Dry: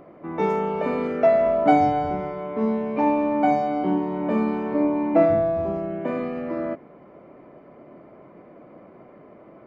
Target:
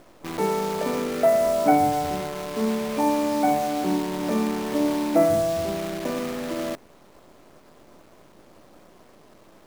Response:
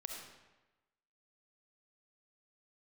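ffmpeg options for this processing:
-af "asuperstop=centerf=3800:order=4:qfactor=1.2,acrusher=bits=6:dc=4:mix=0:aa=0.000001,volume=-1.5dB"

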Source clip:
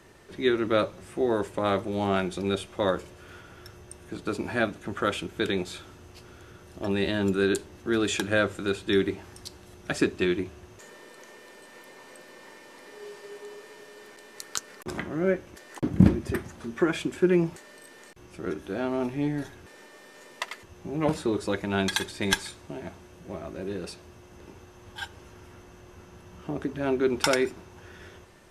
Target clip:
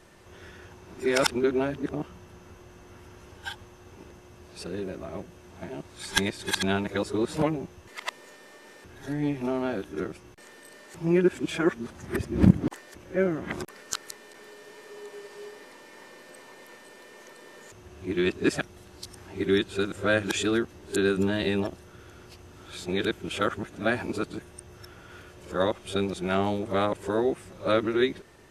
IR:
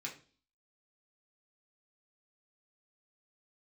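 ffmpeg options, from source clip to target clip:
-af "areverse"

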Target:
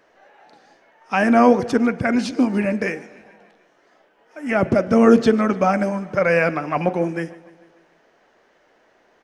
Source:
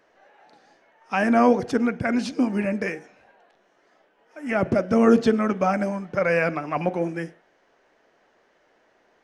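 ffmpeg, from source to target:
-af "aecho=1:1:147|294|441|588|735:0.0891|0.0535|0.0321|0.0193|0.0116,volume=4dB"

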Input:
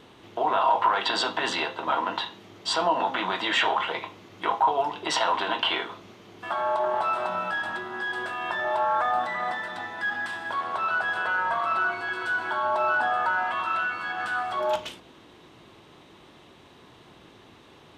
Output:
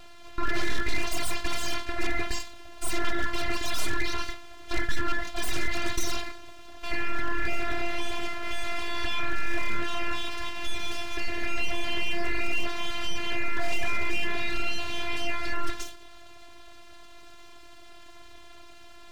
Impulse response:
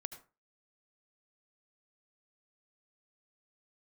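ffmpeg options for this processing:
-filter_complex "[0:a]aeval=exprs='abs(val(0))':c=same,afftfilt=real='hypot(re,im)*cos(PI*b)':imag='0':win_size=512:overlap=0.75,atempo=0.94,asplit=2[a][b];[b]aeval=exprs='0.355*sin(PI/2*3.55*val(0)/0.355)':c=same,volume=-3.5dB[c];[a][c]amix=inputs=2:normalize=0,volume=-6dB"

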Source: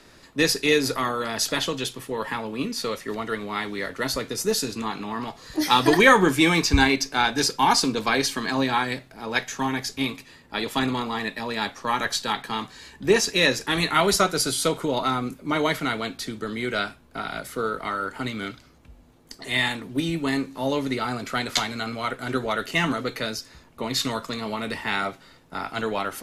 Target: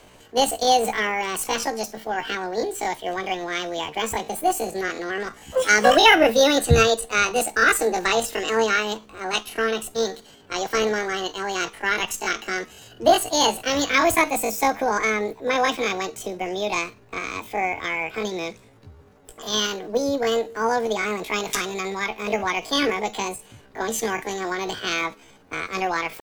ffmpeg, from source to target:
-af "asetrate=74167,aresample=44100,atempo=0.594604,highshelf=f=3.3k:g=-7.5,volume=3.5dB"

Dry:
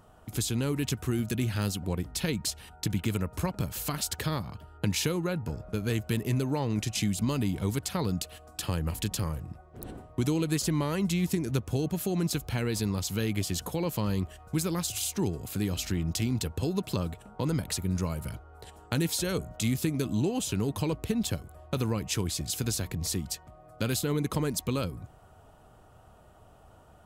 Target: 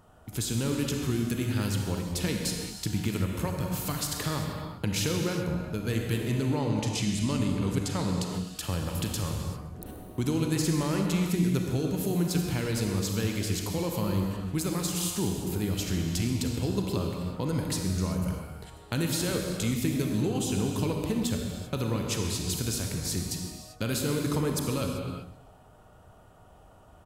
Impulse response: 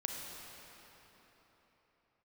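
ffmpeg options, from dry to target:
-filter_complex "[0:a]asettb=1/sr,asplit=3[a][b][c];[a]atrim=end=6.184[d];[b]atrim=start=6.18:end=8.29,asetpts=PTS-STARTPTS,afade=t=in:d=0.004:c=qsin,afade=t=out:st=2.106:d=0.004:c=qsin,lowpass=10k[e];[c]atrim=start=8.286[f];[d][e]acrossfade=d=0.004:c1=hsin:c2=qsin[g];[g][f]acrossfade=d=0.004:c1=qsin:c2=hsin,aecho=1:1:129|258|387|516:0.1|0.052|0.027|0.0141[h];[1:a]atrim=start_sample=2205,afade=t=out:st=0.45:d=0.01,atrim=end_sample=20286[i];[h][i]afir=irnorm=-1:irlink=0"

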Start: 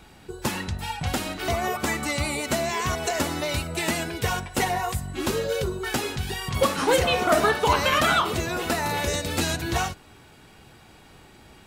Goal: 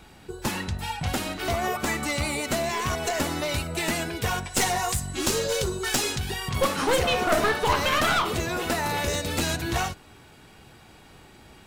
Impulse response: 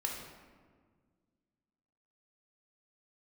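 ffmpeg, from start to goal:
-filter_complex "[0:a]asplit=3[a][b][c];[a]afade=t=out:st=4.44:d=0.02[d];[b]equalizer=f=6.8k:w=0.65:g=10.5,afade=t=in:st=4.44:d=0.02,afade=t=out:st=6.17:d=0.02[e];[c]afade=t=in:st=6.17:d=0.02[f];[d][e][f]amix=inputs=3:normalize=0,aeval=exprs='clip(val(0),-1,0.0668)':c=same"

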